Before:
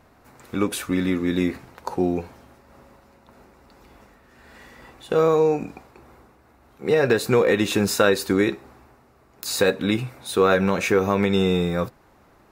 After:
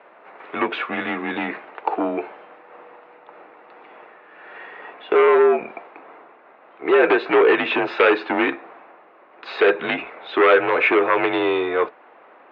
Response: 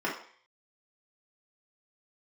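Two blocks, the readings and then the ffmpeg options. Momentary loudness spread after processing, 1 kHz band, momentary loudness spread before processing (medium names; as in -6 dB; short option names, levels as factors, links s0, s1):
17 LU, +6.5 dB, 12 LU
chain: -af "aeval=exprs='0.596*sin(PI/2*2.82*val(0)/0.596)':c=same,highpass=f=470:t=q:w=0.5412,highpass=f=470:t=q:w=1.307,lowpass=f=3000:t=q:w=0.5176,lowpass=f=3000:t=q:w=0.7071,lowpass=f=3000:t=q:w=1.932,afreqshift=-66,volume=0.708"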